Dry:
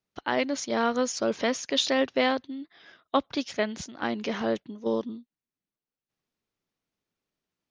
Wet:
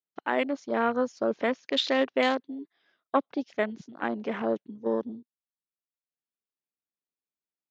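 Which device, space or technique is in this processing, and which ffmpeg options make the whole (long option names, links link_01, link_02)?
over-cleaned archive recording: -filter_complex "[0:a]highpass=180,lowpass=6100,afwtdn=0.0158,asettb=1/sr,asplit=3[link_01][link_02][link_03];[link_01]atrim=end=1.534[link_04];[link_02]atrim=start=1.53:end=2.09,asetpts=PTS-STARTPTS,afade=type=in:duration=0.004:curve=qsin,afade=type=out:start_time=0.556:duration=0.004:curve=qsin,lowpass=5300[link_05];[link_03]atrim=start=2.086[link_06];[link_04][link_05]acrossfade=duration=0.004:curve1=hsin:curve2=qsin[link_07];[link_07][link_06]acrossfade=duration=0.004:curve1=qsin:curve2=hsin"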